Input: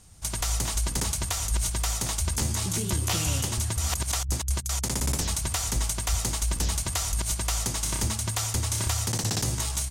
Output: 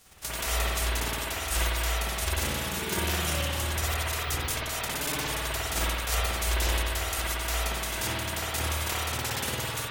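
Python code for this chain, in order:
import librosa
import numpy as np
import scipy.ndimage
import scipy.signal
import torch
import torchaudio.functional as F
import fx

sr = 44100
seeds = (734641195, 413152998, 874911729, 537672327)

y = fx.envelope_flatten(x, sr, power=0.3)
y = fx.dereverb_blind(y, sr, rt60_s=1.7)
y = fx.rev_spring(y, sr, rt60_s=1.8, pass_ms=(52,), chirp_ms=80, drr_db=-8.5)
y = F.gain(torch.from_numpy(y), -5.0).numpy()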